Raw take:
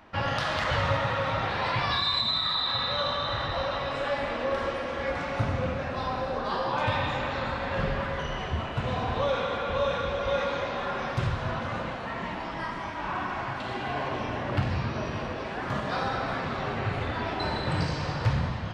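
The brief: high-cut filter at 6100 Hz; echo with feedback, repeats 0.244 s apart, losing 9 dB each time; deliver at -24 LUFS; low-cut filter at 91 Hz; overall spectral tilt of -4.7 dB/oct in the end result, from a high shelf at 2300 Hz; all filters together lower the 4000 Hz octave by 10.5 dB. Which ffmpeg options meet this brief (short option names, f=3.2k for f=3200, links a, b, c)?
-af "highpass=91,lowpass=6.1k,highshelf=f=2.3k:g=-4,equalizer=f=4k:t=o:g=-8,aecho=1:1:244|488|732|976:0.355|0.124|0.0435|0.0152,volume=6.5dB"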